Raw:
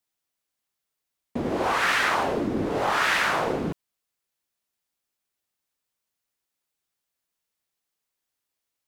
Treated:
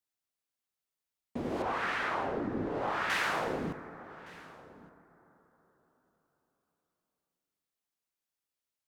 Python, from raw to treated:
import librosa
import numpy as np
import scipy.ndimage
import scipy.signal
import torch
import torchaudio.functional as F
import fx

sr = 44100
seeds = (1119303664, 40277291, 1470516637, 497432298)

y = fx.lowpass(x, sr, hz=1700.0, slope=6, at=(1.62, 3.1))
y = y + 10.0 ** (-21.5 / 20.0) * np.pad(y, (int(1165 * sr / 1000.0), 0))[:len(y)]
y = fx.rev_plate(y, sr, seeds[0], rt60_s=4.6, hf_ratio=0.3, predelay_ms=0, drr_db=12.0)
y = F.gain(torch.from_numpy(y), -8.0).numpy()